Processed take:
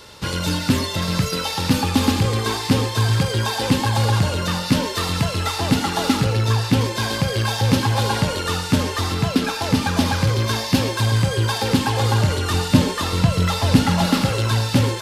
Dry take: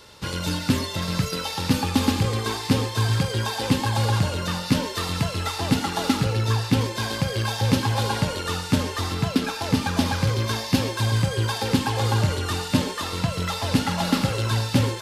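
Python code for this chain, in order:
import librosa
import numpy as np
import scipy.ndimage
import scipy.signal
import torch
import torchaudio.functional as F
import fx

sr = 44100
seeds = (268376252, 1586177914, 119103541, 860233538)

p1 = 10.0 ** (-24.0 / 20.0) * np.tanh(x / 10.0 ** (-24.0 / 20.0))
p2 = x + (p1 * 10.0 ** (-5.0 / 20.0))
p3 = fx.low_shelf(p2, sr, hz=270.0, db=6.0, at=(12.54, 14.06))
y = p3 * 10.0 ** (1.5 / 20.0)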